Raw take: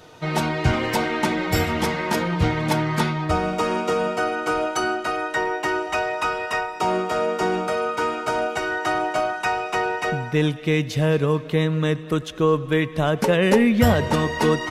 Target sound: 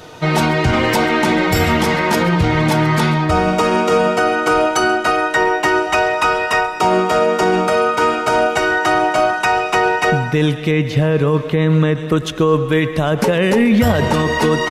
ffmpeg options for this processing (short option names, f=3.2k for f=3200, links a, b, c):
-filter_complex "[0:a]asplit=2[a][b];[b]adelay=134.1,volume=-19dB,highshelf=f=4k:g=-3.02[c];[a][c]amix=inputs=2:normalize=0,asettb=1/sr,asplit=3[d][e][f];[d]atrim=end=10.714[g];[e]atrim=start=10.71:end=12.17,asetpts=PTS-STARTPTS,afade=t=in:d=0.004:c=qsin,afade=t=out:st=1.456:d=0.004:c=qsin,acrossover=split=3100[h][i];[i]acompressor=threshold=-47dB:ratio=4:attack=1:release=60[j];[h][j]amix=inputs=2:normalize=0[k];[f]atrim=start=12.166[l];[g][k]acrossfade=d=0.004:c1=hsin:c2=qsin[m];[m][l]acrossfade=d=0.004:c1=qsin:c2=hsin,alimiter=level_in=14dB:limit=-1dB:release=50:level=0:latency=1,volume=-4.5dB"